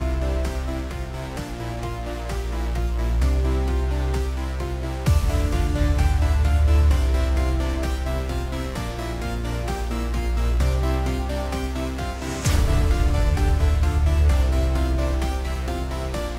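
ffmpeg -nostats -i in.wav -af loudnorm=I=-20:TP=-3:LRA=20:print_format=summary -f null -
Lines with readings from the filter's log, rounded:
Input Integrated:    -23.7 LUFS
Input True Peak:      -8.5 dBTP
Input LRA:             4.2 LU
Input Threshold:     -33.7 LUFS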